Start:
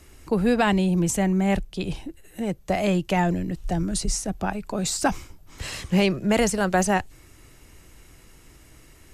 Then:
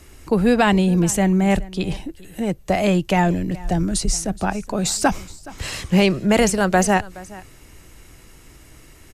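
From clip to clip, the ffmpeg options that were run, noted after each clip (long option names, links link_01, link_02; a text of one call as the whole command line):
ffmpeg -i in.wav -af "aecho=1:1:421:0.0944,volume=4.5dB" out.wav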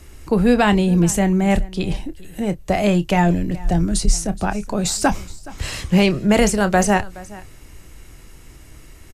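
ffmpeg -i in.wav -filter_complex "[0:a]lowshelf=frequency=99:gain=6,asplit=2[link_01][link_02];[link_02]adelay=29,volume=-13.5dB[link_03];[link_01][link_03]amix=inputs=2:normalize=0" out.wav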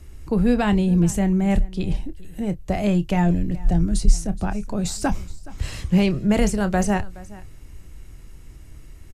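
ffmpeg -i in.wav -af "lowshelf=frequency=230:gain=10,volume=-8dB" out.wav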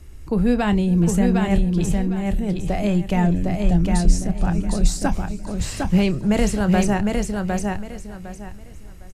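ffmpeg -i in.wav -af "aecho=1:1:757|1514|2271:0.668|0.16|0.0385" out.wav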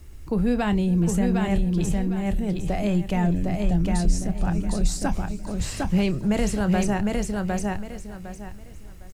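ffmpeg -i in.wav -filter_complex "[0:a]asplit=2[link_01][link_02];[link_02]alimiter=limit=-14.5dB:level=0:latency=1,volume=-0.5dB[link_03];[link_01][link_03]amix=inputs=2:normalize=0,acrusher=bits=8:mix=0:aa=0.000001,volume=-8dB" out.wav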